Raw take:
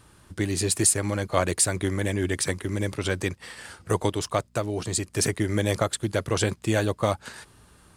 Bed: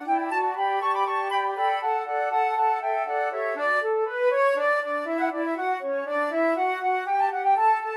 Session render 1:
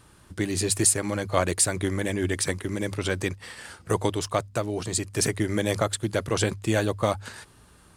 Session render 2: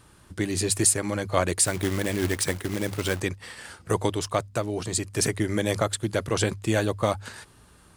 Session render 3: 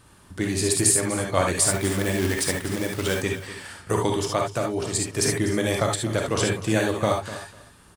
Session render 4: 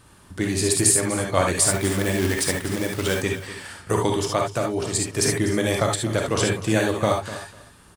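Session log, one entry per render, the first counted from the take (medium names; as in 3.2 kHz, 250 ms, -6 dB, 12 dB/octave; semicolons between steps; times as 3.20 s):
de-hum 50 Hz, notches 2
1.65–3.20 s: companded quantiser 4-bit
feedback delay 248 ms, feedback 18%, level -14.5 dB; gated-style reverb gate 90 ms rising, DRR 1 dB
trim +1.5 dB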